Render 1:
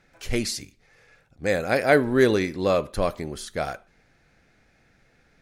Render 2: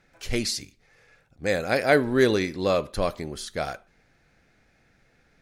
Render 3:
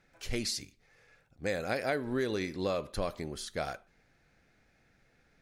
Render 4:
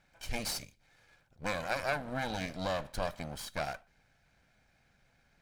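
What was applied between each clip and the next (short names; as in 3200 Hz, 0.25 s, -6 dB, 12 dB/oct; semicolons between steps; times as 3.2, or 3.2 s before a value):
dynamic EQ 4400 Hz, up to +4 dB, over -46 dBFS, Q 1.1; gain -1.5 dB
compressor 6:1, threshold -23 dBFS, peak gain reduction 9.5 dB; gain -5 dB
minimum comb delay 1.3 ms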